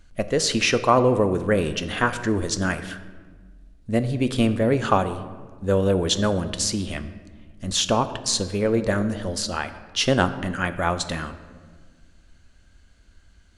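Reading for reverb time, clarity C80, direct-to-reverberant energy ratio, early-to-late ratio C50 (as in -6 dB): 1.5 s, 14.0 dB, 10.5 dB, 12.5 dB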